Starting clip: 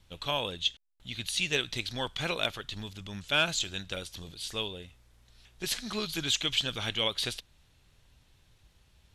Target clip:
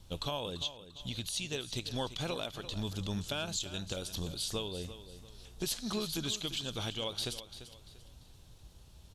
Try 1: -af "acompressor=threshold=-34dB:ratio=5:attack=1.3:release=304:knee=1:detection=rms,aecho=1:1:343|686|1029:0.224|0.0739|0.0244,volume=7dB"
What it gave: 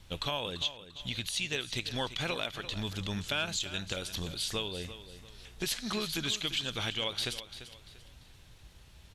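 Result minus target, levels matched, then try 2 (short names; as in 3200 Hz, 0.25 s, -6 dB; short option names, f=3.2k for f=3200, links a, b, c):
2000 Hz band +5.5 dB
-af "acompressor=threshold=-34dB:ratio=5:attack=1.3:release=304:knee=1:detection=rms,equalizer=f=2k:w=1.2:g=-11.5,aecho=1:1:343|686|1029:0.224|0.0739|0.0244,volume=7dB"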